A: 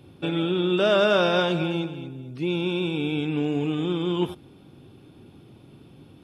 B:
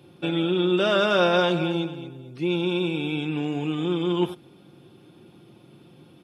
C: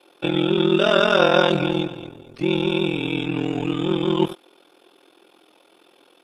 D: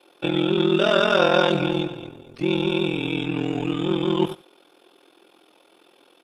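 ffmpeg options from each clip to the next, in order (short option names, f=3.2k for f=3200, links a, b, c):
-af "highpass=79,lowshelf=f=160:g=-6,aecho=1:1:5.7:0.4"
-filter_complex "[0:a]acrossover=split=390[a][b];[a]aeval=exprs='sgn(val(0))*max(abs(val(0))-0.00708,0)':c=same[c];[c][b]amix=inputs=2:normalize=0,aeval=exprs='val(0)*sin(2*PI*21*n/s)':c=same,volume=7dB"
-filter_complex "[0:a]asplit=2[a][b];[b]asoftclip=type=tanh:threshold=-10.5dB,volume=-6dB[c];[a][c]amix=inputs=2:normalize=0,aecho=1:1:87:0.126,volume=-4.5dB"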